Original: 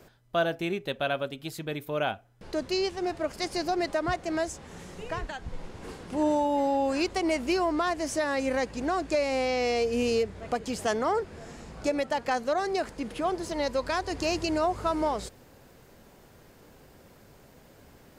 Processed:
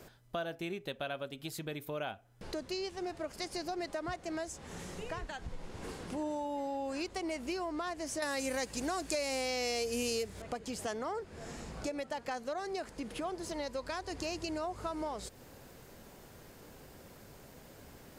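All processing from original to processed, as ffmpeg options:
ffmpeg -i in.wav -filter_complex "[0:a]asettb=1/sr,asplit=3[link_01][link_02][link_03];[link_01]atrim=end=8.224[link_04];[link_02]atrim=start=8.22:end=10.42,asetpts=PTS-STARTPTS,afade=type=in:duration=0.004:curve=qsin,afade=type=out:start_time=2.196:duration=0.004:curve=qsin,aemphasis=mode=production:type=75kf,acontrast=55[link_05];[link_03]atrim=start=10.416[link_06];[link_04][link_05]acrossfade=duration=0.004:curve1=hsin:curve2=qsin[link_07];[link_07][link_06]acrossfade=duration=0.004:curve1=qsin:curve2=hsin,equalizer=frequency=11000:width=0.37:gain=3.5,acompressor=threshold=-40dB:ratio=2.5" out.wav

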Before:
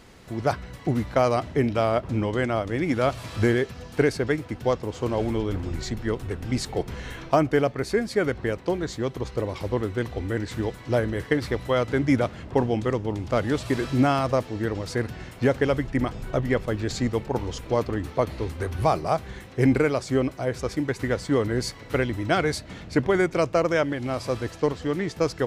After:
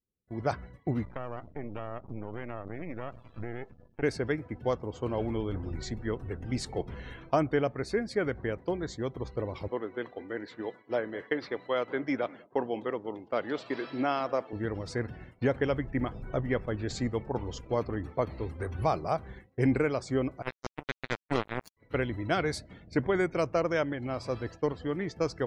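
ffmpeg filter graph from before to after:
ffmpeg -i in.wav -filter_complex "[0:a]asettb=1/sr,asplit=3[link_01][link_02][link_03];[link_01]atrim=end=1.054[link_04];[link_02]atrim=start=1.05:end=4.03,asetpts=PTS-STARTPTS,afade=type=in:duration=0.004:curve=qsin,afade=type=out:start_time=2.976:duration=0.004:curve=qsin,highshelf=frequency=5000:gain=-8.5,acompressor=threshold=-26dB:ratio=4:attack=3.2:release=140:knee=1:detection=peak,aeval=exprs='max(val(0),0)':channel_layout=same[link_05];[link_03]atrim=start=4.026[link_06];[link_04][link_05]acrossfade=duration=0.004:curve1=hsin:curve2=qsin[link_07];[link_07][link_06]acrossfade=duration=0.004:curve1=qsin:curve2=hsin,asettb=1/sr,asplit=3[link_08][link_09][link_10];[link_08]atrim=end=9.684[link_11];[link_09]atrim=start=9.68:end=14.53,asetpts=PTS-STARTPTS,afade=type=in:duration=0.004:curve=qsin,afade=type=out:start_time=4.846:duration=0.004:curve=qsin,highpass=310,lowpass=6000,aecho=1:1:202:0.0891,atrim=end_sample=213885[link_12];[link_10]atrim=start=14.526[link_13];[link_11][link_12]acrossfade=duration=0.004:curve1=hsin:curve2=qsin[link_14];[link_14][link_13]acrossfade=duration=0.004:curve1=qsin:curve2=hsin,asettb=1/sr,asplit=3[link_15][link_16][link_17];[link_15]atrim=end=20.424[link_18];[link_16]atrim=start=20.42:end=21.77,asetpts=PTS-STARTPTS,afade=type=in:duration=0.004:curve=qsin,afade=type=out:start_time=1.346:duration=0.004:curve=qsin,equalizer=frequency=9300:width=0.32:gain=4.5,acrusher=bits=2:mix=0:aa=0.5[link_19];[link_17]atrim=start=21.766[link_20];[link_18][link_19]acrossfade=duration=0.004:curve1=hsin:curve2=qsin[link_21];[link_21][link_20]acrossfade=duration=0.004:curve1=qsin:curve2=hsin,afftdn=noise_reduction=22:noise_floor=-45,agate=range=-33dB:threshold=-34dB:ratio=3:detection=peak,volume=-6dB" out.wav

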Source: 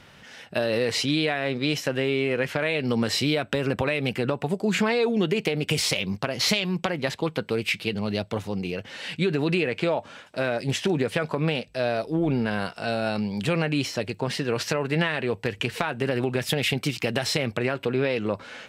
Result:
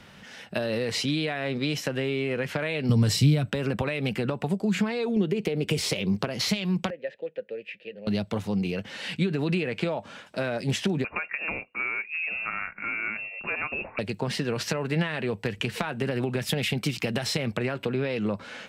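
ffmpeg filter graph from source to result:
ffmpeg -i in.wav -filter_complex "[0:a]asettb=1/sr,asplit=3[link_01][link_02][link_03];[link_01]atrim=end=2.894[link_04];[link_02]atrim=start=2.89:end=3.5,asetpts=PTS-STARTPTS,afade=type=in:duration=0.004:curve=qsin,afade=type=out:start_time=0.606:duration=0.004:curve=qsin,bass=frequency=250:gain=12,treble=frequency=4000:gain=9,aecho=1:1:6.8:0.45,atrim=end_sample=26901[link_05];[link_03]atrim=start=3.496[link_06];[link_04][link_05]acrossfade=duration=0.004:curve1=hsin:curve2=qsin[link_07];[link_07][link_06]acrossfade=duration=0.004:curve1=qsin:curve2=hsin,asettb=1/sr,asplit=3[link_08][link_09][link_10];[link_08]atrim=end=5.164[link_11];[link_09]atrim=start=5.16:end=6.28,asetpts=PTS-STARTPTS,afade=type=in:duration=0.004:curve=qsin,afade=type=out:start_time=1.116:duration=0.004:curve=qsin,equalizer=frequency=400:width=1.4:gain=8,acompressor=mode=upward:threshold=-22dB:ratio=2.5:attack=3.2:release=140:knee=2.83:detection=peak[link_12];[link_10]atrim=start=6.276[link_13];[link_11][link_12]acrossfade=duration=0.004:curve1=hsin:curve2=qsin[link_14];[link_14][link_13]acrossfade=duration=0.004:curve1=qsin:curve2=hsin,asettb=1/sr,asplit=3[link_15][link_16][link_17];[link_15]atrim=end=6.904[link_18];[link_16]atrim=start=6.9:end=8.07,asetpts=PTS-STARTPTS,afade=type=in:duration=0.004:curve=qsin,afade=type=out:start_time=1.166:duration=0.004:curve=qsin,asplit=3[link_19][link_20][link_21];[link_19]bandpass=frequency=530:width_type=q:width=8,volume=0dB[link_22];[link_20]bandpass=frequency=1840:width_type=q:width=8,volume=-6dB[link_23];[link_21]bandpass=frequency=2480:width_type=q:width=8,volume=-9dB[link_24];[link_22][link_23][link_24]amix=inputs=3:normalize=0,highshelf=frequency=3600:gain=-8[link_25];[link_17]atrim=start=8.066[link_26];[link_18][link_25]acrossfade=duration=0.004:curve1=hsin:curve2=qsin[link_27];[link_27][link_26]acrossfade=duration=0.004:curve1=qsin:curve2=hsin,asettb=1/sr,asplit=3[link_28][link_29][link_30];[link_28]atrim=end=11.044[link_31];[link_29]atrim=start=11.04:end=13.99,asetpts=PTS-STARTPTS,afade=type=in:duration=0.004:curve=qsin,afade=type=out:start_time=2.946:duration=0.004:curve=qsin,highpass=frequency=620:poles=1,lowpass=frequency=2500:width_type=q:width=0.5098,lowpass=frequency=2500:width_type=q:width=0.6013,lowpass=frequency=2500:width_type=q:width=0.9,lowpass=frequency=2500:width_type=q:width=2.563,afreqshift=-2900[link_32];[link_30]atrim=start=13.986[link_33];[link_31][link_32]acrossfade=duration=0.004:curve1=hsin:curve2=qsin[link_34];[link_34][link_33]acrossfade=duration=0.004:curve1=qsin:curve2=hsin,equalizer=frequency=200:width_type=o:width=0.34:gain=6.5,acrossover=split=150[link_35][link_36];[link_36]acompressor=threshold=-25dB:ratio=6[link_37];[link_35][link_37]amix=inputs=2:normalize=0" out.wav

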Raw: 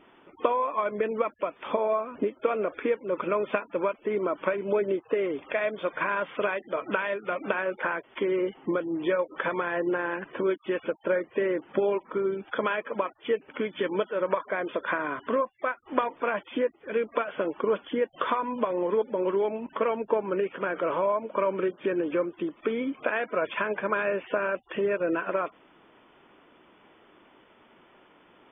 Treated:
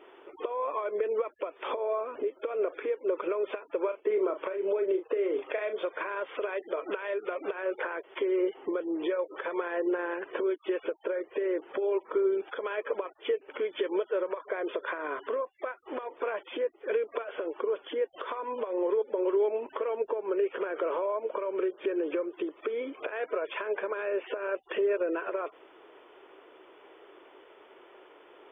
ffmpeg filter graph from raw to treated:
ffmpeg -i in.wav -filter_complex "[0:a]asettb=1/sr,asplit=3[link_01][link_02][link_03];[link_01]atrim=end=3.834[link_04];[link_02]atrim=start=3.83:end=5.79,asetpts=PTS-STARTPTS,afade=type=in:duration=0.004:curve=qsin,afade=type=out:start_time=1.956:duration=0.004:curve=qsin,asplit=2[link_05][link_06];[link_06]adelay=37,volume=-9.5dB[link_07];[link_05][link_07]amix=inputs=2:normalize=0,atrim=end_sample=86436,agate=range=-33dB:threshold=-47dB:ratio=3:release=100:detection=peak[link_08];[link_03]atrim=start=5.786[link_09];[link_04][link_08]acrossfade=duration=0.004:curve1=hsin:curve2=qsin[link_10];[link_10][link_09]acrossfade=duration=0.004:curve1=qsin:curve2=hsin,acompressor=threshold=-29dB:ratio=8,alimiter=level_in=1dB:limit=-24dB:level=0:latency=1:release=239,volume=-1dB,lowshelf=frequency=280:width_type=q:width=3:gain=-12,volume=1dB" out.wav

